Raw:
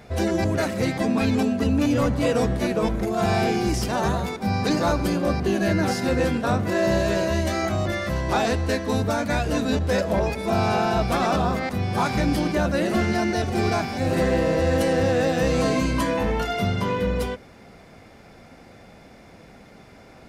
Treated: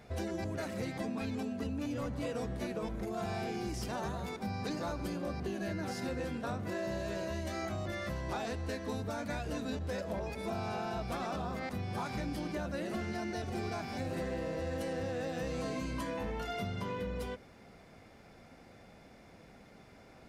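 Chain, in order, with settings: compressor, threshold -25 dBFS, peak gain reduction 8 dB; gain -9 dB

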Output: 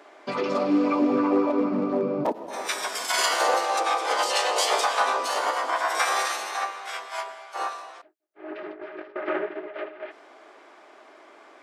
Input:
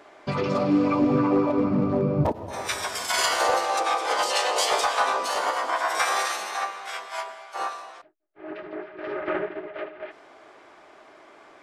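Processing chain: HPF 230 Hz 24 dB/oct; 8.61–9.16 negative-ratio compressor -38 dBFS, ratio -0.5

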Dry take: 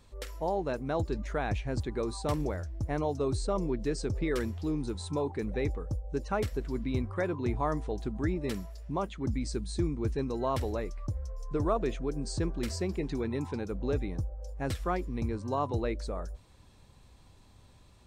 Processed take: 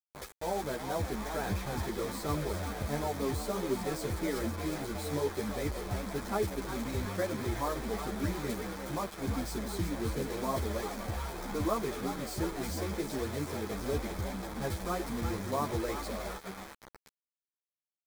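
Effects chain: on a send: frequency-shifting echo 0.363 s, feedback 56%, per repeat +140 Hz, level -9 dB; on the sum: bit-crush 6-bit; bell 4900 Hz -2 dB 1.7 oct; notch 2800 Hz, Q 6.4; ensemble effect

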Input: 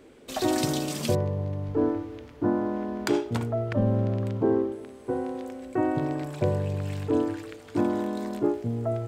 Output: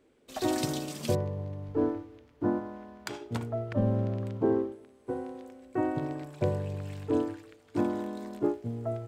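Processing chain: 2.58–3.2 bell 320 Hz -4.5 dB -> -13 dB 1.5 oct; upward expander 1.5:1, over -43 dBFS; gain -2 dB

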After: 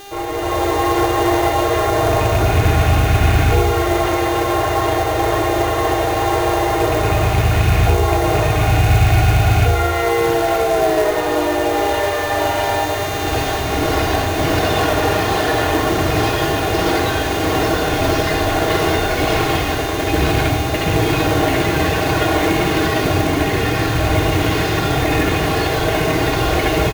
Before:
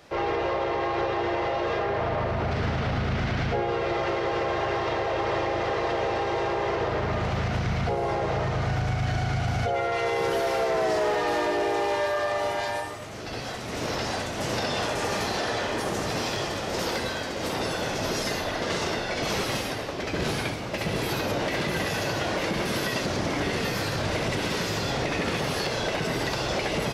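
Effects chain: rattling part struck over -27 dBFS, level -22 dBFS; air absorption 200 m; thinning echo 0.982 s, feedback 81%, high-pass 530 Hz, level -12 dB; buzz 400 Hz, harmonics 17, -38 dBFS -4 dB/oct; in parallel at -6.5 dB: requantised 6-bit, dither triangular; on the sum: comb 2.8 ms, depth 50%; on a send at -3.5 dB: reverb RT60 0.85 s, pre-delay 6 ms; on the sum: AGC gain up to 14 dB; short-mantissa float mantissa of 2-bit; bell 72 Hz +11 dB 0.87 oct; gain -4 dB

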